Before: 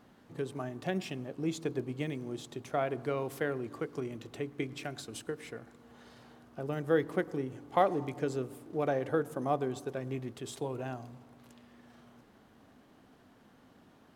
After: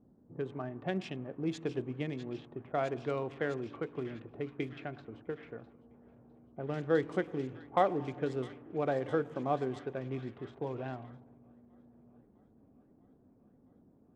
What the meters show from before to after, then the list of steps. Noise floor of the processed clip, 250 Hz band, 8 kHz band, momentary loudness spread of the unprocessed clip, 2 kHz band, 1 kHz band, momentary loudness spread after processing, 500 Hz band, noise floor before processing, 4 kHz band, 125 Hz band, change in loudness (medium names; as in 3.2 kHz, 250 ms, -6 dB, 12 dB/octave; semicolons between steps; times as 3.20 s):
-65 dBFS, -1.0 dB, under -10 dB, 12 LU, -1.5 dB, -1.0 dB, 13 LU, -1.0 dB, -61 dBFS, -4.0 dB, -1.0 dB, -1.0 dB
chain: local Wiener filter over 9 samples; low-pass 5.9 kHz 12 dB/octave; feedback echo behind a high-pass 655 ms, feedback 83%, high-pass 2.9 kHz, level -7 dB; level-controlled noise filter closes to 350 Hz, open at -30.5 dBFS; trim -1 dB